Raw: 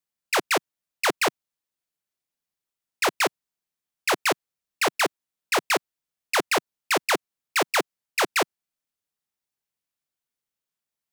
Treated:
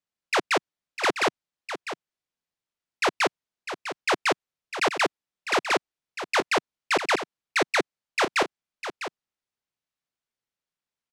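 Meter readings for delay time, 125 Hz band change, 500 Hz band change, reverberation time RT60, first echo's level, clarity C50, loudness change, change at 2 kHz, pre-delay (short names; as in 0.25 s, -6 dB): 0.652 s, +0.5 dB, 0.0 dB, none, -10.5 dB, none, -1.0 dB, 0.0 dB, none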